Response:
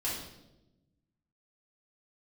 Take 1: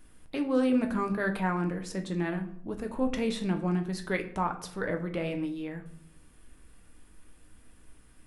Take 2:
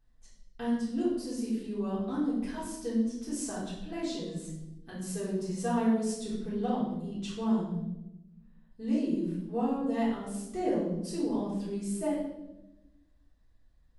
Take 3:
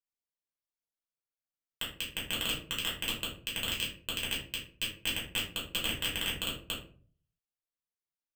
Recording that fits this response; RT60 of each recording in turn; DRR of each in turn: 2; 0.65 s, 0.95 s, 0.45 s; 4.5 dB, -8.5 dB, -6.0 dB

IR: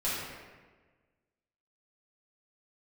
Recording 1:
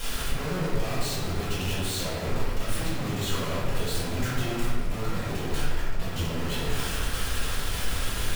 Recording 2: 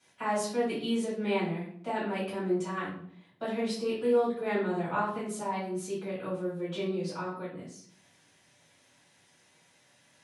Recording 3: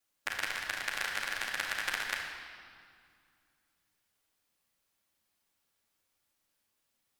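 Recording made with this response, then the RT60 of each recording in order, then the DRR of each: 1; 1.4 s, 0.60 s, 2.2 s; -11.0 dB, -11.0 dB, -11.0 dB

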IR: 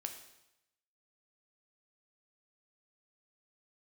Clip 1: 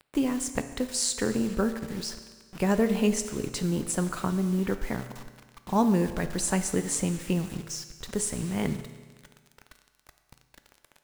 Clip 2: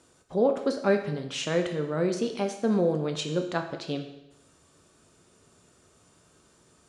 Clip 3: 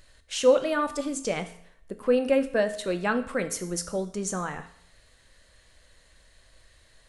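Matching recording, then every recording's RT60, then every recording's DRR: 2; 1.5 s, 0.90 s, 0.65 s; 9.0 dB, 4.5 dB, 8.0 dB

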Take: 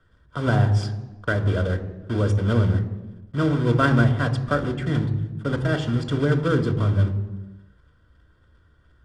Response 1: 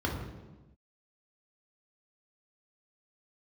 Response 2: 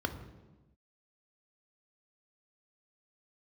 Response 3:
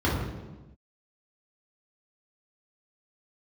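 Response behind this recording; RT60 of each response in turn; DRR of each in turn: 2; no single decay rate, 1.1 s, no single decay rate; -0.5 dB, 7.5 dB, -6.0 dB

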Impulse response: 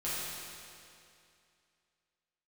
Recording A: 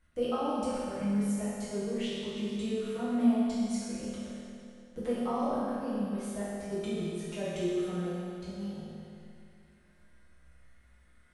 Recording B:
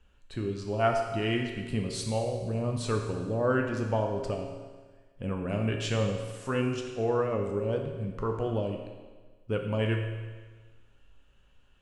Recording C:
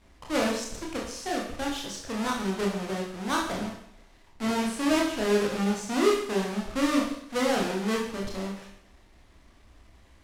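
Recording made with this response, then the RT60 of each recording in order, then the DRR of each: A; 2.5 s, 1.4 s, 0.75 s; -11.0 dB, 2.0 dB, -2.5 dB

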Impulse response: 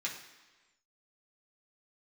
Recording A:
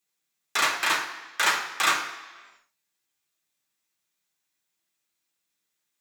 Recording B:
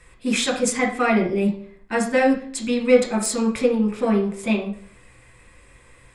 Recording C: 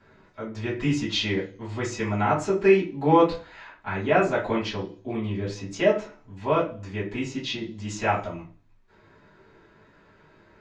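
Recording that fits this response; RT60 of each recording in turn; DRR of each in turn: A; 1.3 s, 0.55 s, 0.40 s; -4.0 dB, -1.0 dB, -10.5 dB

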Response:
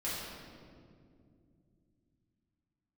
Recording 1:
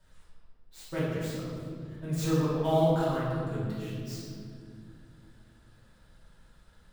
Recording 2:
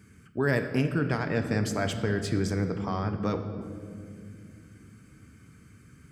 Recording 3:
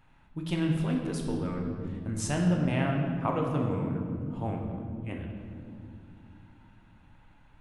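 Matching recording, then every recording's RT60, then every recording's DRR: 1; 2.4 s, no single decay rate, 2.4 s; -10.0 dB, 7.0 dB, 0.0 dB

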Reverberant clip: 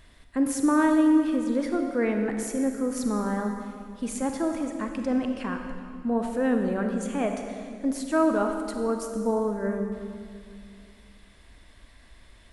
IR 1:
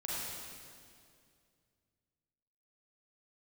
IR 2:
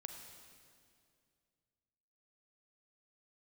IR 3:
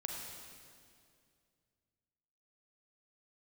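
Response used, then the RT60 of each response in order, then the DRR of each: 2; 2.3 s, 2.3 s, 2.3 s; -7.0 dB, 4.0 dB, 0.0 dB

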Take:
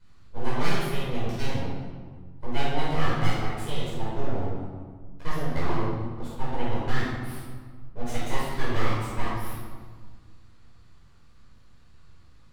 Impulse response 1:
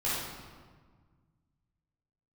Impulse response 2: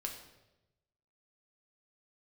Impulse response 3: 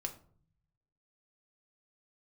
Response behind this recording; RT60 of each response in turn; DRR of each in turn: 1; 1.6 s, 1.0 s, 0.50 s; -10.5 dB, 1.5 dB, 3.5 dB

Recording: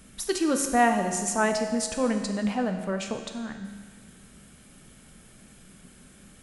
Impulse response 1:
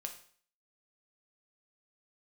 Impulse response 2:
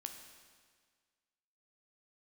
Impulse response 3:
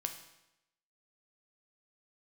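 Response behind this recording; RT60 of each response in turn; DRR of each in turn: 2; 0.50 s, 1.7 s, 0.90 s; 3.5 dB, 4.5 dB, 5.0 dB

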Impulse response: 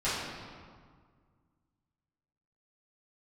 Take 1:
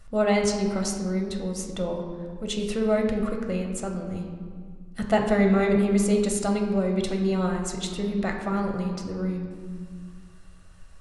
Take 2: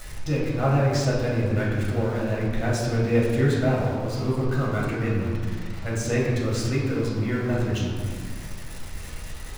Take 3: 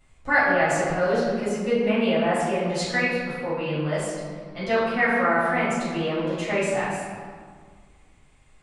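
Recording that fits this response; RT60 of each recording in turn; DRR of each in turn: 3; 1.8 s, 1.8 s, 1.8 s; 1.5 dB, -6.5 dB, -13.5 dB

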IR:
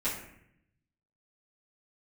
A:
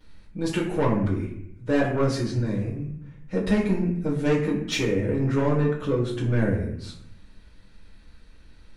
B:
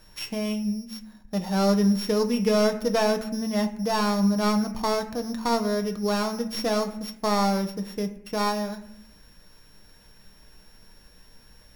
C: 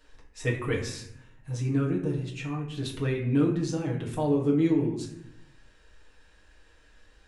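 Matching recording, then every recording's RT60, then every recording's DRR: A; 0.70 s, 0.75 s, 0.70 s; -13.0 dB, 5.5 dB, -3.5 dB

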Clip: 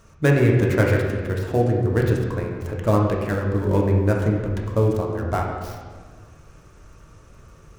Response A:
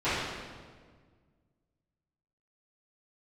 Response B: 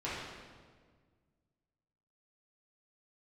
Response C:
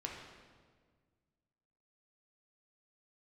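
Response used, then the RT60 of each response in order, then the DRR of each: C; 1.6 s, 1.6 s, 1.6 s; -19.0 dB, -11.0 dB, -1.5 dB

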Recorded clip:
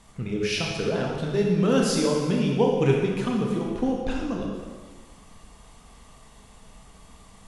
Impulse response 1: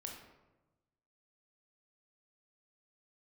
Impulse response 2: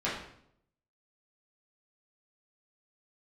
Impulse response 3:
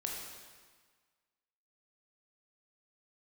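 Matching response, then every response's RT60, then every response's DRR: 3; 1.1 s, 0.70 s, 1.5 s; 0.0 dB, -9.5 dB, -1.5 dB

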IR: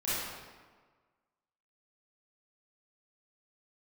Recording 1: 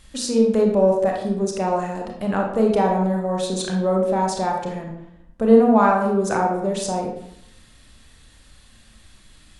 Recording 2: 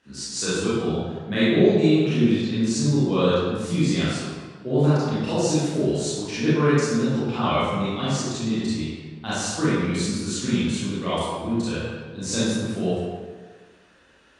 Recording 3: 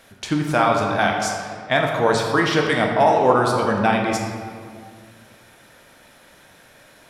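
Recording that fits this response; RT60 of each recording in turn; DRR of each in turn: 2; 0.75 s, 1.5 s, 2.1 s; 0.0 dB, -12.0 dB, 0.0 dB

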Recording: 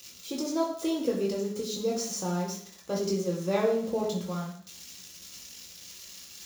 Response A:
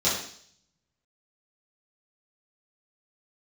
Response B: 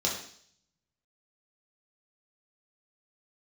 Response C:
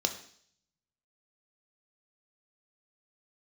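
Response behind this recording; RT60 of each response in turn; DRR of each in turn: B; 0.60 s, 0.60 s, 0.60 s; -11.0 dB, -3.5 dB, 5.5 dB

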